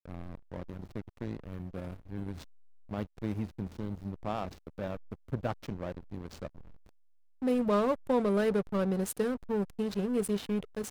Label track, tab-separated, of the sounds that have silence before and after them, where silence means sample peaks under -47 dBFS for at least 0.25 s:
2.890000	6.890000	sound